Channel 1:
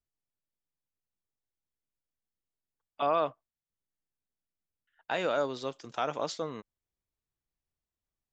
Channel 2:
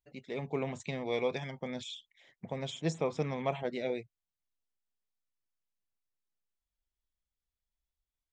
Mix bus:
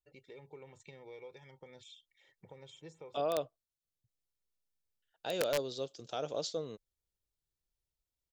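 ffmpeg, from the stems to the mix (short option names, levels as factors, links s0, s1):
-filter_complex "[0:a]equalizer=f=250:t=o:w=1:g=-6,equalizer=f=500:t=o:w=1:g=4,equalizer=f=1000:t=o:w=1:g=-12,equalizer=f=2000:t=o:w=1:g=-12,equalizer=f=4000:t=o:w=1:g=4,aeval=exprs='(mod(14.1*val(0)+1,2)-1)/14.1':c=same,adelay=150,volume=0.891[s0];[1:a]aecho=1:1:2.2:0.68,acompressor=threshold=0.00447:ratio=2.5,volume=0.422,asplit=3[s1][s2][s3];[s1]atrim=end=3.21,asetpts=PTS-STARTPTS,afade=t=out:st=3.206:d=0.004:c=hsin[s4];[s2]atrim=start=3.21:end=4.04,asetpts=PTS-STARTPTS,volume=0[s5];[s3]atrim=start=4.04,asetpts=PTS-STARTPTS,afade=t=in:d=0.004:c=hsin[s6];[s4][s5][s6]concat=n=3:v=0:a=1[s7];[s0][s7]amix=inputs=2:normalize=0"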